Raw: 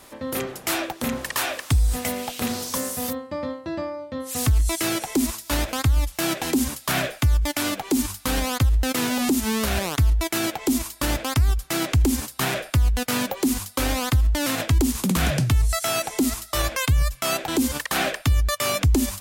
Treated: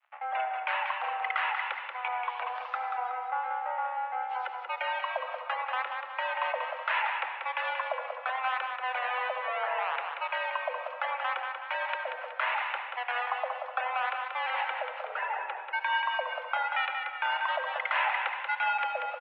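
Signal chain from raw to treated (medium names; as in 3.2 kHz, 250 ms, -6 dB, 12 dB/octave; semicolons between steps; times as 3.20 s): spectral gate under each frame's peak -20 dB strong; in parallel at +1 dB: compression, threshold -27 dBFS, peak gain reduction 11.5 dB; on the sum: crossover distortion -36 dBFS; mistuned SSB +250 Hz 440–2500 Hz; feedback delay 185 ms, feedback 46%, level -5.5 dB; on a send at -8 dB: reverberation RT60 1.2 s, pre-delay 63 ms; on the sum: vibrato 1.2 Hz 25 cents; trim -5 dB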